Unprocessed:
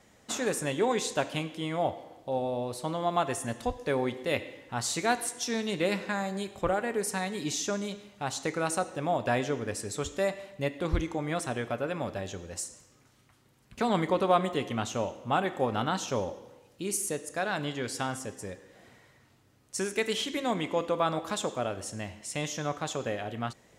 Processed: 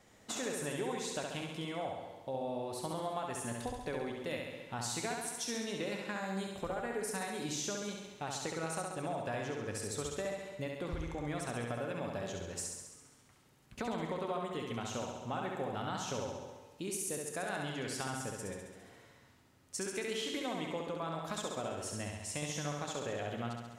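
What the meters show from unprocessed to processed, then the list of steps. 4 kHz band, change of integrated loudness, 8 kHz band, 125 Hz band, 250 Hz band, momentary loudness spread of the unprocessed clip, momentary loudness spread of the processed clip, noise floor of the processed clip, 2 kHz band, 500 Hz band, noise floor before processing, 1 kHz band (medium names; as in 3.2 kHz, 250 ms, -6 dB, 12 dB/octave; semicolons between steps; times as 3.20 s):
-6.0 dB, -7.5 dB, -5.0 dB, -6.0 dB, -7.5 dB, 9 LU, 5 LU, -63 dBFS, -7.5 dB, -8.0 dB, -62 dBFS, -9.0 dB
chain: compression, threshold -33 dBFS, peak gain reduction 14 dB; on a send: flutter echo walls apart 11.6 m, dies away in 1.1 s; on the sum: trim -3.5 dB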